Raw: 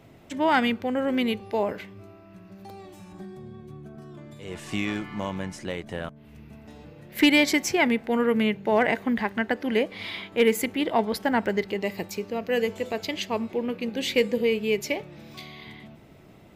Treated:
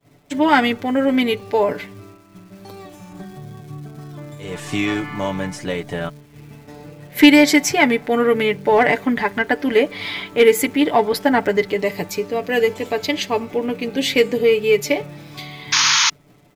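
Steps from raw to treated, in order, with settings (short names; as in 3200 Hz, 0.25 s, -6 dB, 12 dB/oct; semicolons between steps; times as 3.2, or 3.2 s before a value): crackle 450/s -48 dBFS; expander -43 dBFS; comb 6.9 ms, depth 68%; painted sound noise, 15.72–16.1, 860–6800 Hz -21 dBFS; in parallel at -11.5 dB: soft clip -17.5 dBFS, distortion -11 dB; on the sum: notch 2800 Hz, Q 23; gain +4.5 dB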